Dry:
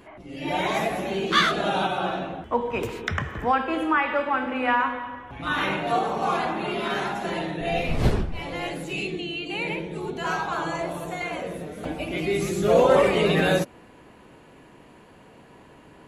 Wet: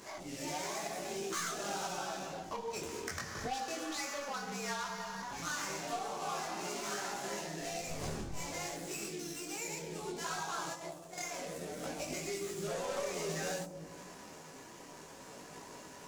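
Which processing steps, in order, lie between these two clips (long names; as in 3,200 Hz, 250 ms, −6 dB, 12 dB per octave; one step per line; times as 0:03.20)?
running median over 15 samples
0:10.73–0:11.18: downward expander −21 dBFS
spectral tilt +2.5 dB per octave
soft clipping −19 dBFS, distortion −13 dB
0:04.28–0:05.22: frequency shifter −61 Hz
parametric band 6,900 Hz +11 dB 1.2 octaves
0:02.45–0:02.96: frequency shifter −20 Hz
0:03.44–0:04.16: healed spectral selection 830–1,800 Hz both
on a send at −7 dB: Chebyshev band-stop filter 970–6,400 Hz + convolution reverb RT60 0.70 s, pre-delay 5 ms
on the sum: downward compressor 3 to 1, threshold −41 dBFS, peak gain reduction 16.5 dB
micro pitch shift up and down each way 20 cents
level +4 dB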